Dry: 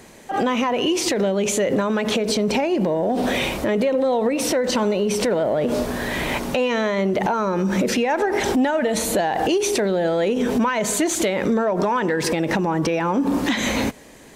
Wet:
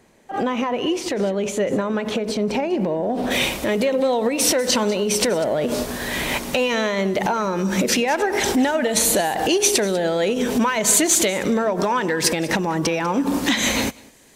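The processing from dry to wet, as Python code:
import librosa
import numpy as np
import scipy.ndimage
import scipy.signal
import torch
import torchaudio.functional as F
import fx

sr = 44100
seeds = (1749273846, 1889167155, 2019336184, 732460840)

y = fx.high_shelf(x, sr, hz=2700.0, db=fx.steps((0.0, -4.5), (3.3, 9.0)))
y = y + 10.0 ** (-17.0 / 20.0) * np.pad(y, (int(196 * sr / 1000.0), 0))[:len(y)]
y = fx.upward_expand(y, sr, threshold_db=-36.0, expansion=1.5)
y = F.gain(torch.from_numpy(y), 1.0).numpy()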